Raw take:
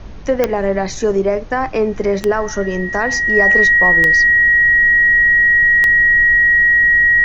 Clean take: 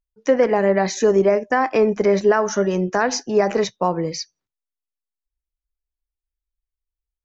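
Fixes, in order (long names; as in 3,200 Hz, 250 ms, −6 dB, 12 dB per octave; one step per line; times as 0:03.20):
click removal
notch filter 1,900 Hz, Q 30
noise reduction from a noise print 30 dB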